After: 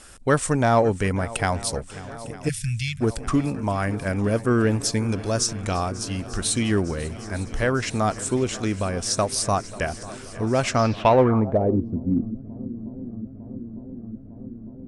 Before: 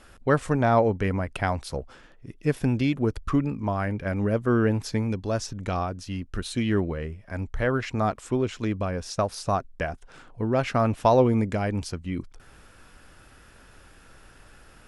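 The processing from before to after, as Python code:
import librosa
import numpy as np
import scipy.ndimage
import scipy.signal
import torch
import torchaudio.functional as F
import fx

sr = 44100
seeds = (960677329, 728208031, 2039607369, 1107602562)

p1 = fx.peak_eq(x, sr, hz=5600.0, db=2.5, octaves=0.31)
p2 = p1 + fx.echo_swing(p1, sr, ms=904, ratio=1.5, feedback_pct=74, wet_db=-19.0, dry=0)
p3 = fx.filter_sweep_lowpass(p2, sr, from_hz=8900.0, to_hz=250.0, start_s=10.66, end_s=11.86, q=3.2)
p4 = fx.high_shelf(p3, sr, hz=3900.0, db=7.0)
p5 = np.clip(p4, -10.0 ** (-17.0 / 20.0), 10.0 ** (-17.0 / 20.0))
p6 = p4 + (p5 * librosa.db_to_amplitude(-11.5))
y = fx.cheby2_bandstop(p6, sr, low_hz=370.0, high_hz=760.0, order=4, stop_db=70, at=(2.48, 3.0), fade=0.02)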